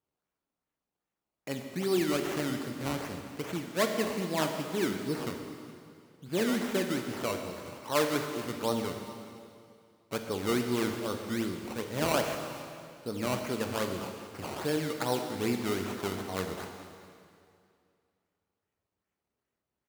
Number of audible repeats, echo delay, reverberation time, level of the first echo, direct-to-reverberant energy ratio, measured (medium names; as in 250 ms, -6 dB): 1, 417 ms, 2.4 s, -20.0 dB, 4.0 dB